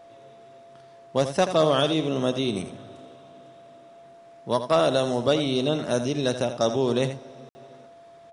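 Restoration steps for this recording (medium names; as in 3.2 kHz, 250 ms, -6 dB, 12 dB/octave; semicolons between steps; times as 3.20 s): band-stop 680 Hz, Q 30; room tone fill 7.49–7.55 s; inverse comb 82 ms -10.5 dB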